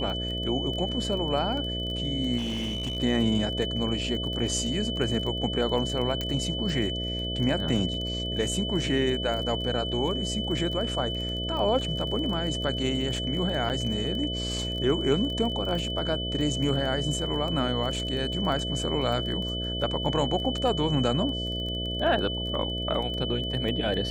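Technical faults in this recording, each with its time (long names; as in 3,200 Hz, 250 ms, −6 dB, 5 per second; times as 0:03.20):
mains buzz 60 Hz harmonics 11 −33 dBFS
surface crackle 16 per second −32 dBFS
whistle 3,000 Hz −32 dBFS
0:02.37–0:02.97: clipping −26.5 dBFS
0:06.21: click −16 dBFS
0:13.69–0:13.70: drop-out 8.8 ms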